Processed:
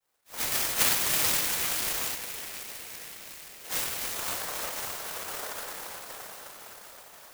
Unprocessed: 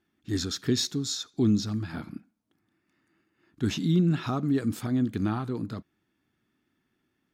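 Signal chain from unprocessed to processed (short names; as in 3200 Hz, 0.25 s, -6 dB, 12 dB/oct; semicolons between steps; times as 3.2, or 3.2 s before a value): regenerating reverse delay 0.259 s, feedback 78%, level -6 dB; inverse Chebyshev high-pass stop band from 280 Hz, stop band 80 dB; thin delay 0.356 s, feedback 82%, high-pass 2500 Hz, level -16 dB; reverb RT60 3.1 s, pre-delay 5 ms, DRR -10 dB; noise vocoder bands 3; 2.15–3.7 fixed phaser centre 2700 Hz, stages 4; clock jitter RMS 0.094 ms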